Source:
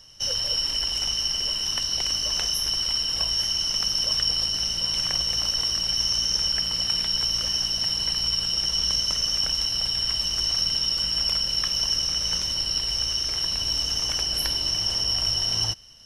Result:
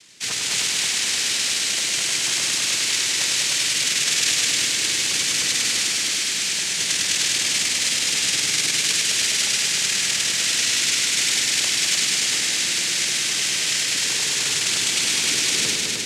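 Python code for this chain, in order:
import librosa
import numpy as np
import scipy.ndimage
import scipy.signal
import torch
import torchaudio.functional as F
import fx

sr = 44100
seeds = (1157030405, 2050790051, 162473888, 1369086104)

p1 = fx.overload_stage(x, sr, gain_db=25.5, at=(5.88, 6.78))
p2 = fx.noise_vocoder(p1, sr, seeds[0], bands=3)
y = p2 + fx.echo_heads(p2, sr, ms=102, heads='all three', feedback_pct=58, wet_db=-6, dry=0)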